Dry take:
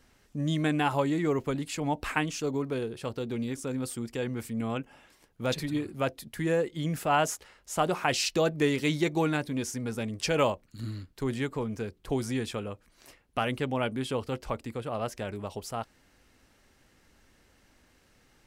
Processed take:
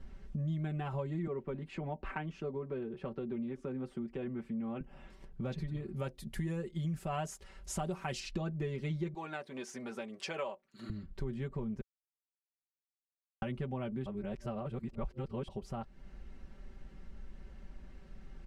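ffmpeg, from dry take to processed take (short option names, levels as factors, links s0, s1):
-filter_complex "[0:a]asettb=1/sr,asplit=3[s0][s1][s2];[s0]atrim=end=1.274[s3];[s1]atrim=start=1.27:end=4.81,asetpts=PTS-STARTPTS,afade=t=in:d=0.004:c=qsin,afade=t=out:st=3.536:d=0.004:c=qsin,acrossover=split=190 3200:gain=0.251 1 0.2[s4][s5][s6];[s4][s5][s6]amix=inputs=3:normalize=0[s7];[s2]atrim=start=4.806[s8];[s3][s7]acrossfade=d=0.004:c1=hsin:c2=qsin[s9];[s9][s8]acrossfade=d=0.004:c1=qsin:c2=hsin,asettb=1/sr,asplit=3[s10][s11][s12];[s10]atrim=end=5.964[s13];[s11]atrim=start=5.96:end=8.2,asetpts=PTS-STARTPTS,afade=t=in:d=0.004:c=qsin,afade=t=out:st=2.236:d=0.004:c=qsin,equalizer=f=11000:w=0.37:g=14[s14];[s12]atrim=start=8.196[s15];[s13][s14]acrossfade=d=0.004:c1=hsin:c2=qsin[s16];[s16][s15]acrossfade=d=0.004:c1=qsin:c2=hsin,asettb=1/sr,asplit=3[s17][s18][s19];[s17]atrim=end=9.144[s20];[s18]atrim=start=9.14:end=10.9,asetpts=PTS-STARTPTS,afade=t=in:d=0.004:c=qsin,afade=t=out:st=1.756:d=0.004:c=qsin,highpass=560[s21];[s19]atrim=start=10.896[s22];[s20][s21]acrossfade=d=0.004:c1=hsin:c2=qsin[s23];[s23][s22]acrossfade=d=0.004:c1=qsin:c2=hsin,asplit=5[s24][s25][s26][s27][s28];[s24]atrim=end=11.81,asetpts=PTS-STARTPTS,afade=t=out:st=11.806:d=0.004:c=hsin[s29];[s25]atrim=start=11.81:end=13.42,asetpts=PTS-STARTPTS,volume=0[s30];[s26]atrim=start=13.42:end=14.062,asetpts=PTS-STARTPTS,afade=t=in:d=0.004:c=hsin[s31];[s27]atrim=start=14.058:end=15.482,asetpts=PTS-STARTPTS,areverse[s32];[s28]atrim=start=15.478[s33];[s29][s30][s31]concat=n=3:v=0:a=1[s34];[s34][s32]acrossfade=d=0.004:c1=hsin:c2=hsin[s35];[s35][s33]acrossfade=d=0.004:c1=hsin:c2=hsin,aemphasis=mode=reproduction:type=riaa,aecho=1:1:5.2:0.84,acompressor=threshold=0.0112:ratio=3,volume=0.891"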